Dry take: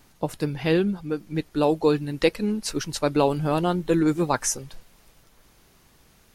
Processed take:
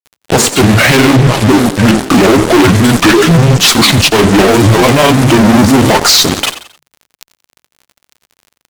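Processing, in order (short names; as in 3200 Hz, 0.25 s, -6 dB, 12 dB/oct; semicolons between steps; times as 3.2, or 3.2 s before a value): HPF 160 Hz 24 dB/oct; bell 260 Hz -6 dB 2.6 oct; notches 60/120/180/240/300/360/420/480/540/600 Hz; in parallel at 0 dB: compressor, threshold -33 dBFS, peak gain reduction 14 dB; on the sum: varispeed -27%; fuzz box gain 44 dB, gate -41 dBFS; grains, spray 23 ms, pitch spread up and down by 3 st; crackle 34/s -46 dBFS; on a send: frequency-shifting echo 88 ms, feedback 35%, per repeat +47 Hz, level -19 dB; on the sum: maximiser +19.5 dB; gain -1 dB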